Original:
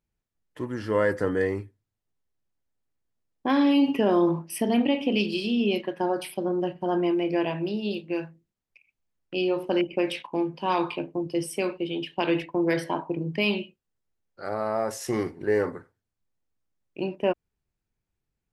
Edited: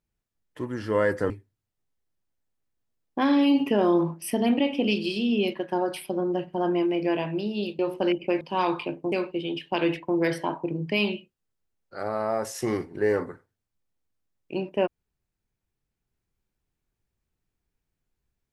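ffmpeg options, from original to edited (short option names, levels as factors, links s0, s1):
-filter_complex "[0:a]asplit=5[s0][s1][s2][s3][s4];[s0]atrim=end=1.302[s5];[s1]atrim=start=1.578:end=8.072[s6];[s2]atrim=start=9.478:end=10.102[s7];[s3]atrim=start=10.518:end=11.232[s8];[s4]atrim=start=11.578[s9];[s5][s6]acrossfade=d=0.004:c1=hsin:c2=hsin[s10];[s10][s7]acrossfade=d=0.004:c1=hsin:c2=hsin[s11];[s11][s8]acrossfade=d=0.004:c1=hsin:c2=hsin[s12];[s12][s9]acrossfade=d=0.004:c1=hsin:c2=hsin"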